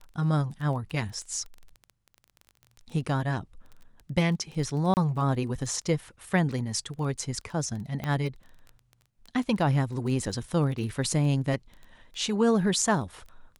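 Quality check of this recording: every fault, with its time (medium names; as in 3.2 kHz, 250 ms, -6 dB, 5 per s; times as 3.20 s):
crackle 15 per s -36 dBFS
4.94–4.97 s: dropout 29 ms
8.04 s: pop -18 dBFS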